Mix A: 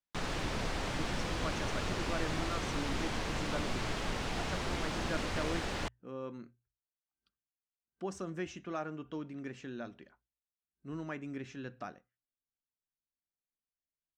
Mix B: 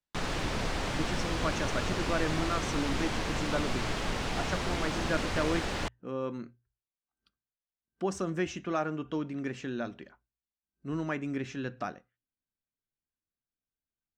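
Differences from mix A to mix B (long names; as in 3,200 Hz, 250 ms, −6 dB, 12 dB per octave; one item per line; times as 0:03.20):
speech +7.5 dB
background +3.5 dB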